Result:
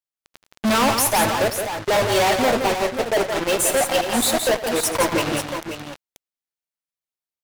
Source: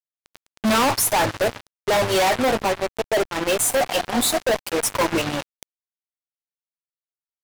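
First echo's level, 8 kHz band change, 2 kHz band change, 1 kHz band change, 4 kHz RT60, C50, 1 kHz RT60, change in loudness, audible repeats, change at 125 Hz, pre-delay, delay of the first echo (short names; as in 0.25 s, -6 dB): -15.5 dB, +1.5 dB, +1.5 dB, +1.5 dB, none, none, none, +1.0 dB, 3, +1.5 dB, none, 83 ms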